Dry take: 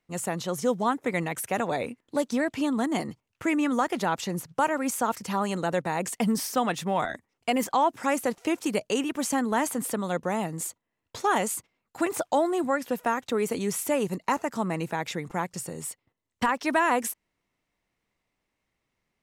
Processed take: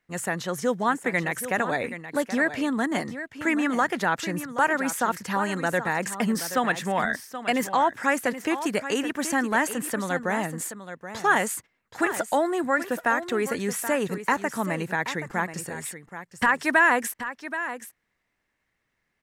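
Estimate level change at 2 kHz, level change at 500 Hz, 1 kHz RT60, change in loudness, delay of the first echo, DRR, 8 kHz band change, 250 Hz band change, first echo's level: +8.5 dB, +0.5 dB, no reverb, +2.0 dB, 777 ms, no reverb, +0.5 dB, +0.5 dB, -11.5 dB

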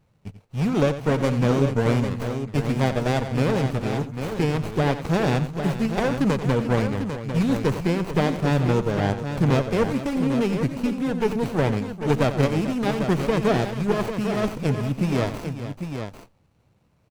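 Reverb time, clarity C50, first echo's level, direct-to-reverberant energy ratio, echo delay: no reverb, no reverb, -12.0 dB, no reverb, 90 ms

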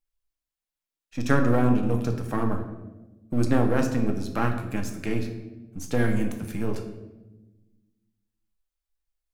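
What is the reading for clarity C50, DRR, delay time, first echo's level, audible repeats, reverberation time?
7.5 dB, 3.5 dB, no echo, no echo, no echo, 1.1 s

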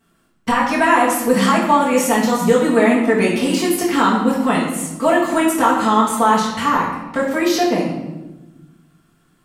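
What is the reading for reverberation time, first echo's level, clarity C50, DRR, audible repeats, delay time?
1.1 s, no echo, 4.0 dB, -6.5 dB, no echo, no echo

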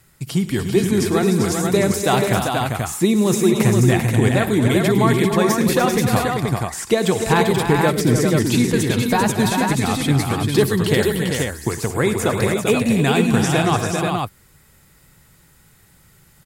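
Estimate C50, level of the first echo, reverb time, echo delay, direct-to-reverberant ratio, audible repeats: no reverb, -17.5 dB, no reverb, 57 ms, no reverb, 6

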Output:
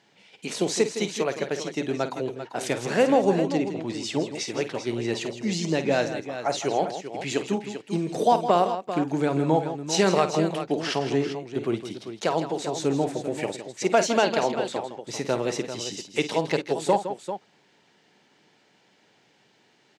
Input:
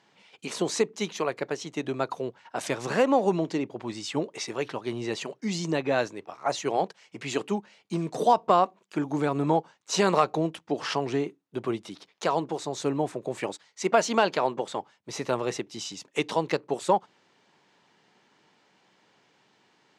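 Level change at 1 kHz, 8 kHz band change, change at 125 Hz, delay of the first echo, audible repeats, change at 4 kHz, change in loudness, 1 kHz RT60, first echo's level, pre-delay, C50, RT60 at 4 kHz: +0.5 dB, +3.5 dB, +3.5 dB, 51 ms, 3, +3.0 dB, +2.5 dB, no reverb, -12.0 dB, no reverb, no reverb, no reverb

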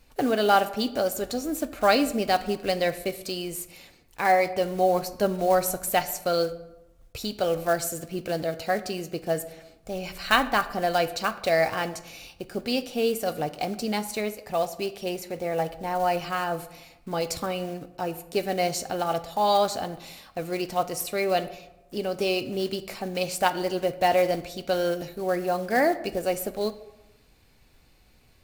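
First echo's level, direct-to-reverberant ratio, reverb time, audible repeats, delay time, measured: no echo, 11.0 dB, 1.0 s, no echo, no echo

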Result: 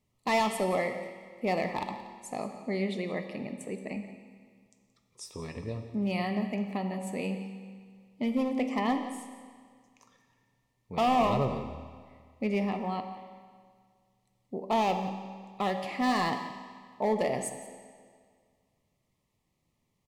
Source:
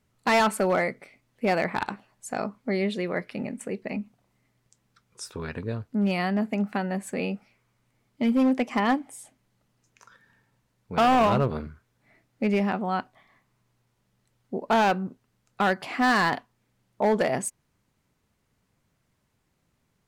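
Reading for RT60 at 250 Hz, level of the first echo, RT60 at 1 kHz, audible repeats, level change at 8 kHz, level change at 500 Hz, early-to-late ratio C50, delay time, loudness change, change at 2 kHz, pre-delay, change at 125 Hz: 1.9 s, -15.0 dB, 1.9 s, 1, -5.0 dB, -4.5 dB, 7.5 dB, 175 ms, -5.5 dB, -8.5 dB, 5 ms, -4.5 dB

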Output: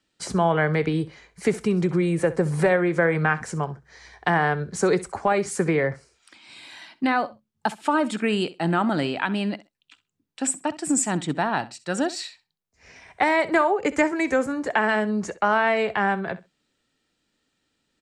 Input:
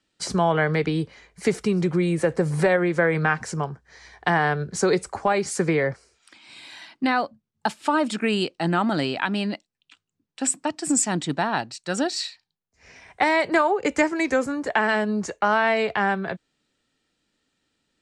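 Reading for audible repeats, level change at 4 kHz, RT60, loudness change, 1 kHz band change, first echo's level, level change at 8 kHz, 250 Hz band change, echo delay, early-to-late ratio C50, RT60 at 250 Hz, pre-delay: 2, -3.0 dB, no reverb, 0.0 dB, 0.0 dB, -17.5 dB, -2.0 dB, 0.0 dB, 65 ms, no reverb, no reverb, no reverb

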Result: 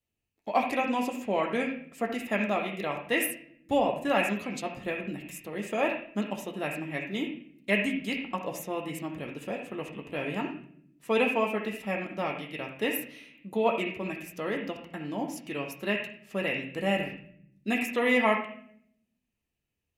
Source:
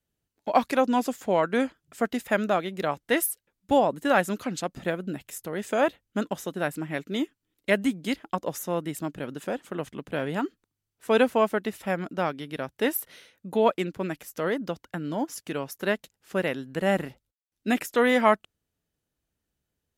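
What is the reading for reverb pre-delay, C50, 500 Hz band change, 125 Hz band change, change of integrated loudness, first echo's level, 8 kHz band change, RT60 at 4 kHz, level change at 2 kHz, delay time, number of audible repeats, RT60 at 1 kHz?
9 ms, 1.5 dB, -4.5 dB, -4.0 dB, -3.0 dB, no echo, -5.5 dB, 0.55 s, -0.5 dB, no echo, no echo, 0.50 s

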